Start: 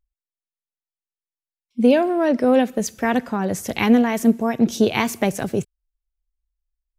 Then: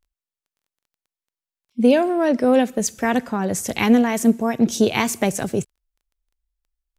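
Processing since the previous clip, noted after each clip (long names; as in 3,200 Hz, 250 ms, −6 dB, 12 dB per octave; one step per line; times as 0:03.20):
dynamic equaliser 7,900 Hz, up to +7 dB, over −48 dBFS, Q 1.2
surface crackle 13 per second −51 dBFS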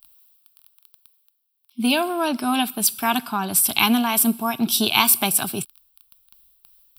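RIAA equalisation recording
reversed playback
upward compression, threshold −41 dBFS
reversed playback
phaser with its sweep stopped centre 1,900 Hz, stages 6
level +5 dB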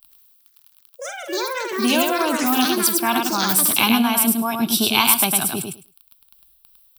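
repeating echo 104 ms, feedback 15%, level −4 dB
delay with pitch and tempo change per echo 98 ms, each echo +7 semitones, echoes 2, each echo −6 dB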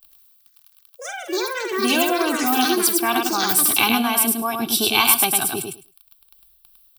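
comb filter 2.6 ms, depth 52%
level −1 dB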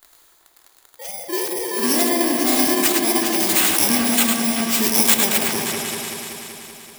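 samples in bit-reversed order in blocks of 32 samples
mains-hum notches 60/120 Hz
echo whose low-pass opens from repeat to repeat 191 ms, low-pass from 750 Hz, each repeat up 2 octaves, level −3 dB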